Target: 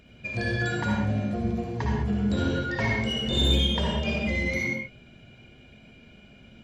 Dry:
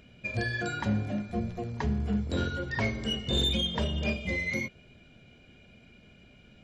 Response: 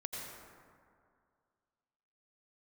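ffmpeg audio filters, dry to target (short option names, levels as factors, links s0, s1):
-filter_complex "[1:a]atrim=start_sample=2205,afade=t=out:st=0.37:d=0.01,atrim=end_sample=16758,asetrate=66150,aresample=44100[s0];[0:a][s0]afir=irnorm=-1:irlink=0,volume=2.51"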